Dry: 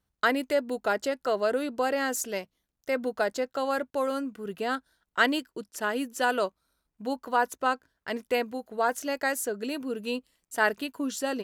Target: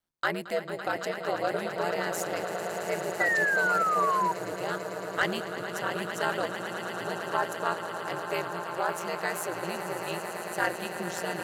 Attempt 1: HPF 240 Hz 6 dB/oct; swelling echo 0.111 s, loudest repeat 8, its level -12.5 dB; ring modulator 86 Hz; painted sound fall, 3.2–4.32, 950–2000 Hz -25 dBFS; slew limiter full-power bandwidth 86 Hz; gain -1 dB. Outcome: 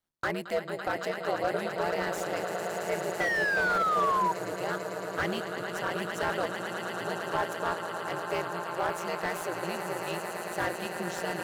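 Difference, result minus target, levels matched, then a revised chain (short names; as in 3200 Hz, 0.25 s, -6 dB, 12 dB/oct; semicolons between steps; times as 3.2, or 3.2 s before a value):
slew limiter: distortion +21 dB
HPF 240 Hz 6 dB/oct; swelling echo 0.111 s, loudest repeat 8, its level -12.5 dB; ring modulator 86 Hz; painted sound fall, 3.2–4.32, 950–2000 Hz -25 dBFS; slew limiter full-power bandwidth 314 Hz; gain -1 dB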